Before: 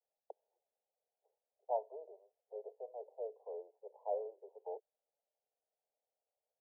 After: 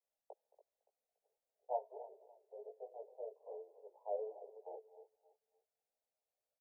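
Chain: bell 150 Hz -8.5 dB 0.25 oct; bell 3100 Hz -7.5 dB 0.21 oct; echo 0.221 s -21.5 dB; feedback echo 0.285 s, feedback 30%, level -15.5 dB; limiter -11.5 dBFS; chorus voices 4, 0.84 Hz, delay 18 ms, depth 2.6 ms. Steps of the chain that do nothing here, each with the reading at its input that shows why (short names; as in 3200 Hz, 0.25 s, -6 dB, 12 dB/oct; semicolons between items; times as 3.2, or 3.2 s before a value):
bell 150 Hz: input band starts at 340 Hz; bell 3100 Hz: input band ends at 1000 Hz; limiter -11.5 dBFS: input peak -23.0 dBFS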